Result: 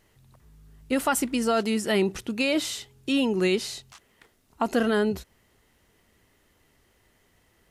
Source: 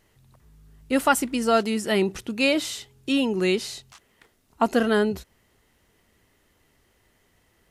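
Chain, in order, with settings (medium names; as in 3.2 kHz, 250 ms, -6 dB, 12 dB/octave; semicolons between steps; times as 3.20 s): peak limiter -14 dBFS, peak gain reduction 7 dB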